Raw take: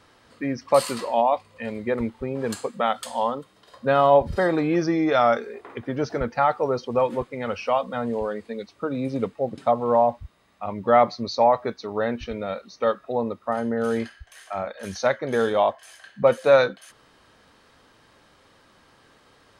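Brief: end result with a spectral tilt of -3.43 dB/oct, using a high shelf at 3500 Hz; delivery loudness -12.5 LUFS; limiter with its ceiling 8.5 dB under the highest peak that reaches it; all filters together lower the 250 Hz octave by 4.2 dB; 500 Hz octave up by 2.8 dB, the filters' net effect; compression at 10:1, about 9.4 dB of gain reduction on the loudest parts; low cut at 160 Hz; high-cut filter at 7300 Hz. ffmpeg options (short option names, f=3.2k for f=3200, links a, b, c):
-af "highpass=160,lowpass=7.3k,equalizer=f=250:t=o:g=-6.5,equalizer=f=500:t=o:g=4.5,highshelf=f=3.5k:g=3,acompressor=threshold=-18dB:ratio=10,volume=16dB,alimiter=limit=-1dB:level=0:latency=1"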